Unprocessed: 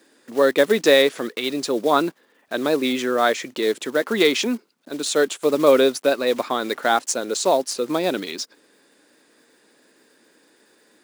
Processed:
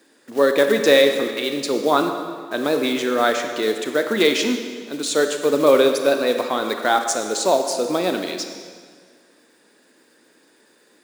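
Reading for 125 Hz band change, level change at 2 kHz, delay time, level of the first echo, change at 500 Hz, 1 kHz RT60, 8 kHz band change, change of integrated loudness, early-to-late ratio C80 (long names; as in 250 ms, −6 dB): +1.0 dB, +1.0 dB, no echo audible, no echo audible, +1.0 dB, 1.8 s, +1.0 dB, +1.0 dB, 7.5 dB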